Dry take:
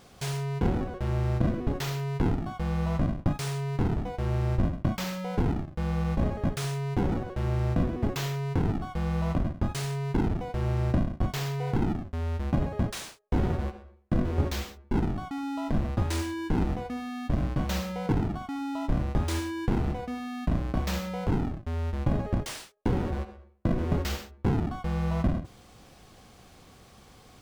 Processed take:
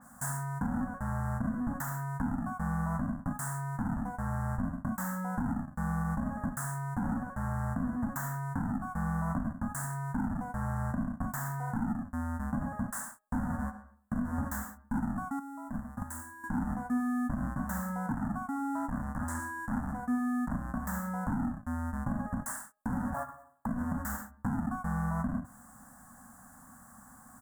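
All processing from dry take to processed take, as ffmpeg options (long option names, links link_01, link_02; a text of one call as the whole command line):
ffmpeg -i in.wav -filter_complex "[0:a]asettb=1/sr,asplit=3[link_01][link_02][link_03];[link_01]atrim=end=15.394[link_04];[link_02]atrim=start=15.39:end=16.44,asetpts=PTS-STARTPTS,afade=type=in:duration=0.004:curve=qsin,afade=type=out:start_time=1.046:duration=0.004:curve=qsin,highshelf=frequency=10000:gain=6,agate=range=-10dB:threshold=-23dB:ratio=16:release=100:detection=peak[link_05];[link_03]atrim=start=16.436[link_06];[link_04][link_05]acrossfade=duration=0.004:curve1=hsin:curve2=qsin[link_07];[link_07][link_06]acrossfade=duration=0.004:curve1=qsin:curve2=hsin,asettb=1/sr,asplit=3[link_08][link_09][link_10];[link_08]atrim=end=18.154[link_11];[link_09]atrim=start=18.15:end=20.54,asetpts=PTS-STARTPTS,afade=type=in:duration=0.004:curve=qsin,afade=type=out:start_time=2.386:duration=0.004:curve=qsin,acrossover=split=9900[link_12][link_13];[link_13]acompressor=threshold=-57dB:ratio=4:attack=1:release=60[link_14];[link_12][link_14]amix=inputs=2:normalize=0,volume=28dB,asoftclip=hard,volume=-28dB[link_15];[link_10]atrim=start=20.536[link_16];[link_11][link_15]acrossfade=duration=0.004:curve1=hsin:curve2=qsin[link_17];[link_17][link_16]acrossfade=duration=0.004:curve1=qsin:curve2=hsin,asettb=1/sr,asplit=3[link_18][link_19][link_20];[link_18]atrim=end=23.144[link_21];[link_19]atrim=start=23.14:end=23.66,asetpts=PTS-STARTPTS,afade=type=in:duration=0.004:curve=qsin,afade=type=out:start_time=0.516:duration=0.004:curve=qsin,aecho=1:1:3.8:0.71,atrim=end_sample=22932,acrusher=bits=6:mode=log:mix=0:aa=0.000001,aeval=exprs='val(0)*sin(2*PI*630*n/s)':channel_layout=same[link_22];[link_20]atrim=start=23.656[link_23];[link_21][link_22]acrossfade=duration=0.004:curve1=hsin:curve2=qsin[link_24];[link_24][link_23]acrossfade=duration=0.004:curve1=qsin:curve2=hsin,firequalizer=gain_entry='entry(120,0);entry(250,14);entry(370,-23);entry(550,-1);entry(860,10);entry(1700,12);entry(2400,-25);entry(4100,-17);entry(7600,15)':delay=0.05:min_phase=1,alimiter=limit=-16.5dB:level=0:latency=1:release=136,adynamicequalizer=threshold=0.00447:dfrequency=3000:dqfactor=0.7:tfrequency=3000:tqfactor=0.7:attack=5:release=100:ratio=0.375:range=1.5:mode=cutabove:tftype=highshelf,volume=-7.5dB" out.wav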